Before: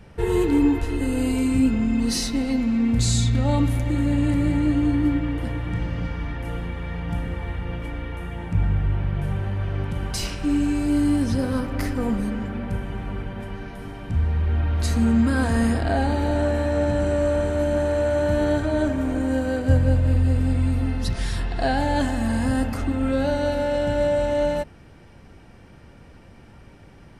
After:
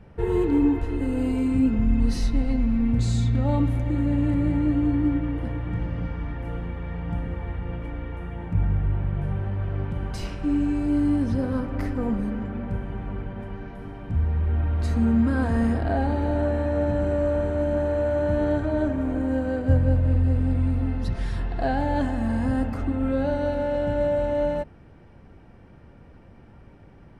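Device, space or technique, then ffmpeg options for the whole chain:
through cloth: -filter_complex "[0:a]asplit=3[link_01][link_02][link_03];[link_01]afade=type=out:start_time=1.77:duration=0.02[link_04];[link_02]asubboost=boost=6.5:cutoff=120,afade=type=in:start_time=1.77:duration=0.02,afade=type=out:start_time=2.93:duration=0.02[link_05];[link_03]afade=type=in:start_time=2.93:duration=0.02[link_06];[link_04][link_05][link_06]amix=inputs=3:normalize=0,highshelf=frequency=2900:gain=-15,volume=-1.5dB"

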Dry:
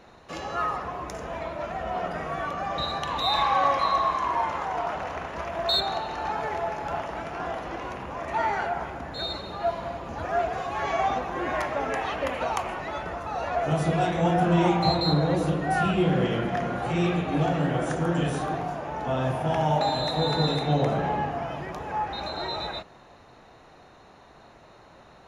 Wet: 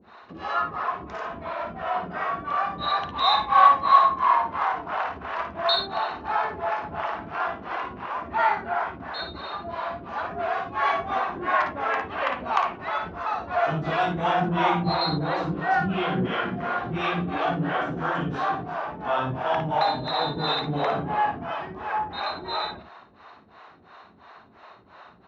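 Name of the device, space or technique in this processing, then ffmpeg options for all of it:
guitar amplifier with harmonic tremolo: -filter_complex "[0:a]acrossover=split=410[link_01][link_02];[link_01]aeval=exprs='val(0)*(1-1/2+1/2*cos(2*PI*2.9*n/s))':channel_layout=same[link_03];[link_02]aeval=exprs='val(0)*(1-1/2-1/2*cos(2*PI*2.9*n/s))':channel_layout=same[link_04];[link_03][link_04]amix=inputs=2:normalize=0,asoftclip=type=tanh:threshold=-16.5dB,highpass=100,equalizer=frequency=140:width_type=q:width=4:gain=-9,equalizer=frequency=320:width_type=q:width=4:gain=-3,equalizer=frequency=520:width_type=q:width=4:gain=-6,equalizer=frequency=1100:width_type=q:width=4:gain=6,equalizer=frequency=1500:width_type=q:width=4:gain=4,lowpass=frequency=4400:width=0.5412,lowpass=frequency=4400:width=1.3066,asettb=1/sr,asplit=3[link_05][link_06][link_07];[link_05]atrim=end=13.014[link_08];[link_06]atrim=start=13.01:end=14.43,asetpts=PTS-STARTPTS,afade=type=in:duration=0.004:curve=qsin,afade=type=out:start_time=1.416:duration=0.004:curve=qsin,highshelf=frequency=5700:gain=7[link_09];[link_07]atrim=start=14.426[link_10];[link_08][link_09]acrossfade=duration=0.004:curve1=hsin:curve2=qsin[link_11];[link_11][link_10]acrossfade=duration=0.004:curve1=qsin:curve2=hsin,aecho=1:1:56|69:0.447|0.168,volume=5dB"

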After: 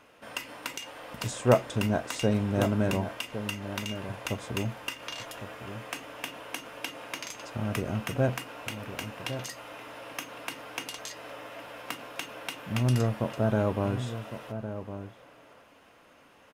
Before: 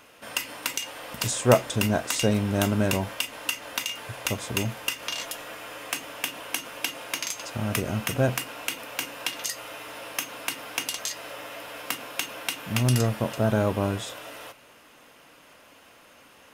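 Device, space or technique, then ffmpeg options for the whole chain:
behind a face mask: -filter_complex "[0:a]highshelf=frequency=2600:gain=-8,highshelf=frequency=12000:gain=-4.5,asplit=2[link_01][link_02];[link_02]adelay=1108,volume=-10dB,highshelf=frequency=4000:gain=-24.9[link_03];[link_01][link_03]amix=inputs=2:normalize=0,volume=-2.5dB"

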